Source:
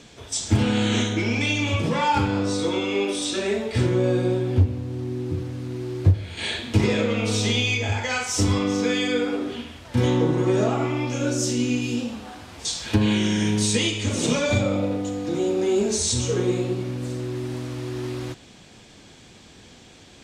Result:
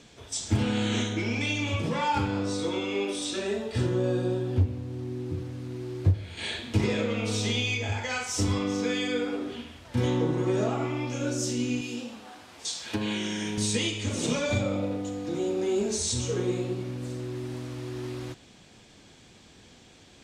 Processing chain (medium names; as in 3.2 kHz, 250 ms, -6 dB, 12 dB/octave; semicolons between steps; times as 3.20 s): 3.44–4.57 s: band-stop 2.2 kHz, Q 6; 11.81–13.58 s: high-pass 320 Hz 6 dB/octave; trim -5.5 dB